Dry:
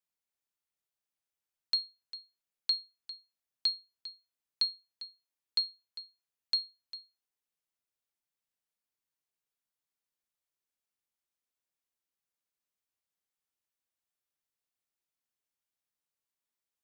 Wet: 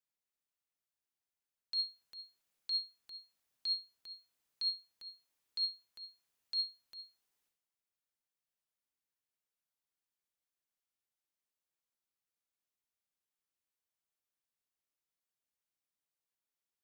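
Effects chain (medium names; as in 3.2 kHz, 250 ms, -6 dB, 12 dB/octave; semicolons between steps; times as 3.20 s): transient shaper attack -9 dB, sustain +11 dB; trim -3.5 dB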